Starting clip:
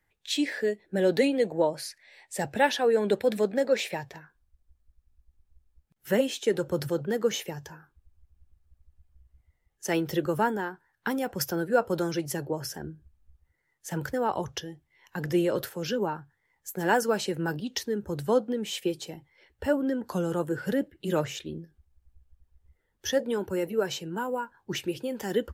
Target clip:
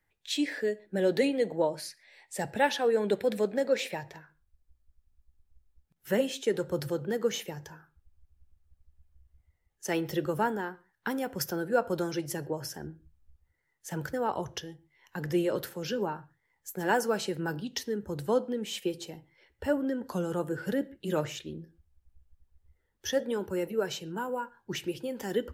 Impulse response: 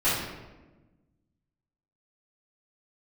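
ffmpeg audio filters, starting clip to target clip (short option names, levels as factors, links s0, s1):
-filter_complex "[0:a]asplit=2[s0][s1];[1:a]atrim=start_sample=2205,atrim=end_sample=6615[s2];[s1][s2]afir=irnorm=-1:irlink=0,volume=0.0299[s3];[s0][s3]amix=inputs=2:normalize=0,volume=0.708"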